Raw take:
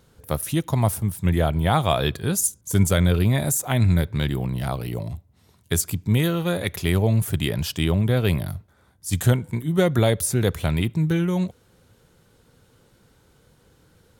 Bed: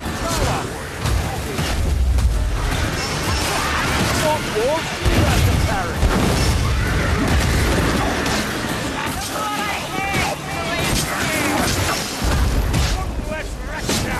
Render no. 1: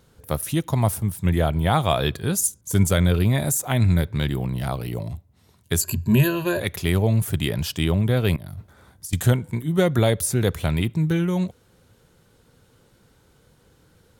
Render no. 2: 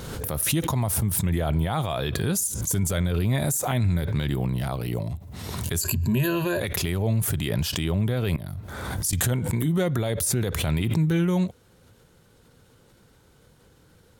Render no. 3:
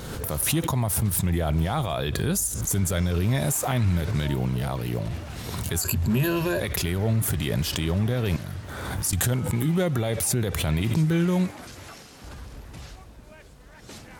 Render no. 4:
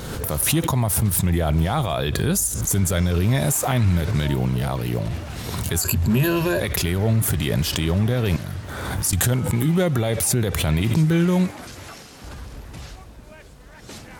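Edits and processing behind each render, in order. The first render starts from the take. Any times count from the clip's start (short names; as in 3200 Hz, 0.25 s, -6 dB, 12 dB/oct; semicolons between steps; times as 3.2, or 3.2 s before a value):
5.81–6.6 ripple EQ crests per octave 1.4, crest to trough 17 dB; 8.36–9.13 negative-ratio compressor -37 dBFS
limiter -16 dBFS, peak gain reduction 11.5 dB; backwards sustainer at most 32 dB/s
add bed -23 dB
gain +4 dB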